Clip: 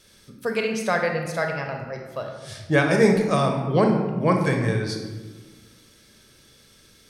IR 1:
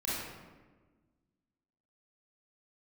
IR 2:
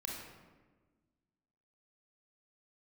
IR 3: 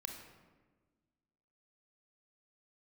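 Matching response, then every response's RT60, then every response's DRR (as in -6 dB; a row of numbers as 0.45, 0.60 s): 3; 1.4, 1.4, 1.4 s; -9.0, -2.0, 2.5 dB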